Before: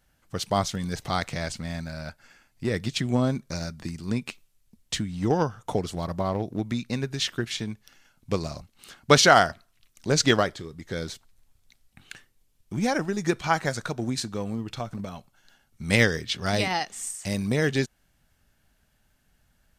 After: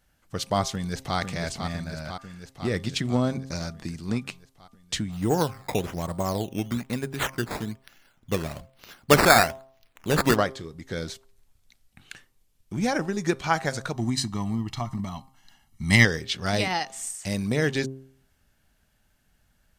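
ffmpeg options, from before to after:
-filter_complex "[0:a]asplit=2[a][b];[b]afade=t=in:st=0.71:d=0.01,afade=t=out:st=1.17:d=0.01,aecho=0:1:500|1000|1500|2000|2500|3000|3500|4000|4500|5000|5500:0.501187|0.350831|0.245582|0.171907|0.120335|0.0842345|0.0589642|0.0412749|0.0288924|0.0202247|0.0141573[c];[a][c]amix=inputs=2:normalize=0,asplit=3[d][e][f];[d]afade=t=out:st=5.11:d=0.02[g];[e]acrusher=samples=10:mix=1:aa=0.000001:lfo=1:lforange=10:lforate=1.1,afade=t=in:st=5.11:d=0.02,afade=t=out:st=10.35:d=0.02[h];[f]afade=t=in:st=10.35:d=0.02[i];[g][h][i]amix=inputs=3:normalize=0,asettb=1/sr,asplit=3[j][k][l];[j]atrim=end=13.944[m];[k]atrim=start=13.94:end=16.05,asetpts=PTS-STARTPTS,afade=t=in:d=0.004:c=qsin,afade=t=out:st=2.106:d=0.004:c=qsin,aecho=1:1:1:0.86,atrim=end_sample=93051[n];[l]atrim=start=16.046[o];[m][n]acrossfade=d=0.004:c1=hsin:c2=qsin[p];[p][o]acrossfade=d=0.004:c1=qsin:c2=hsin,bandreject=f=132.9:t=h:w=4,bandreject=f=265.8:t=h:w=4,bandreject=f=398.7:t=h:w=4,bandreject=f=531.6:t=h:w=4,bandreject=f=664.5:t=h:w=4,bandreject=f=797.4:t=h:w=4,bandreject=f=930.3:t=h:w=4,bandreject=f=1.0632k:t=h:w=4,bandreject=f=1.1961k:t=h:w=4"

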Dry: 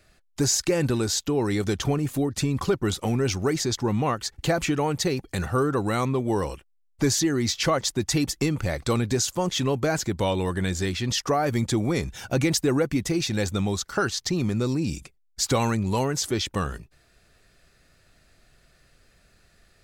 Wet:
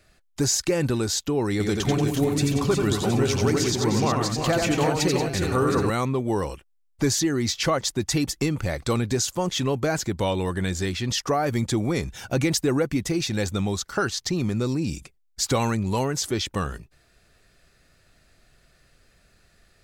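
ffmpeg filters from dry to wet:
-filter_complex "[0:a]asettb=1/sr,asplit=3[a][b][c];[a]atrim=end=1.514[d];[b]atrim=start=1.51:end=5.9,asetpts=PTS-STARTPTS,afade=t=in:d=0.004:c=qsin,afade=t=out:st=4.386:d=0.004:c=qsin,aecho=1:1:87|183|339|365|717|775:0.631|0.316|0.335|0.473|0.251|0.141,atrim=end_sample=193599[e];[c]atrim=start=5.896[f];[d][e]acrossfade=d=0.004:c1=hsin:c2=qsin[g];[g][f]acrossfade=d=0.004:c1=qsin:c2=hsin"

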